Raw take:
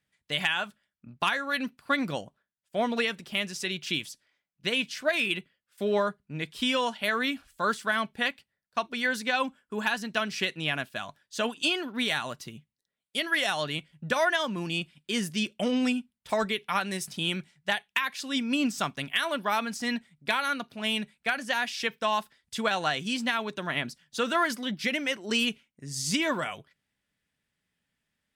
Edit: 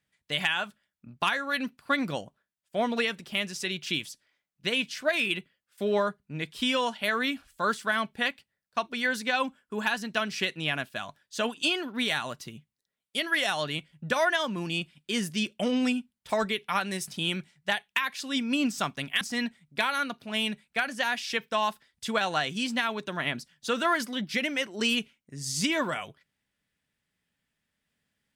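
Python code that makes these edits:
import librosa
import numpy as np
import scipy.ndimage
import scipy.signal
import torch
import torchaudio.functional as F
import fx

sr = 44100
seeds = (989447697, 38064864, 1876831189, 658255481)

y = fx.edit(x, sr, fx.cut(start_s=19.21, length_s=0.5), tone=tone)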